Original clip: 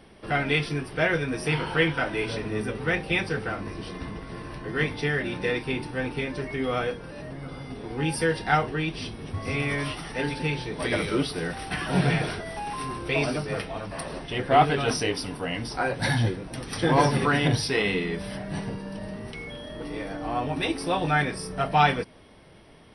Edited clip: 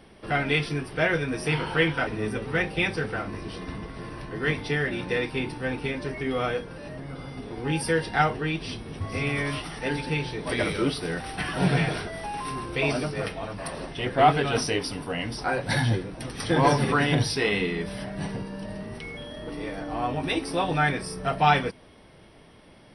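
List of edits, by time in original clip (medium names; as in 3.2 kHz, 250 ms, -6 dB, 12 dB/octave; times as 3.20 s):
2.07–2.40 s: delete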